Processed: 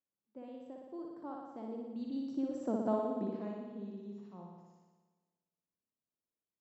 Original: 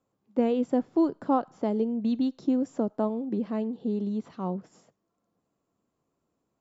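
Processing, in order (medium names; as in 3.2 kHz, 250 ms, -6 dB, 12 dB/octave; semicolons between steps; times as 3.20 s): Doppler pass-by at 2.91 s, 15 m/s, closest 4.2 m; flutter echo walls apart 10.1 m, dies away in 1.3 s; trim -6 dB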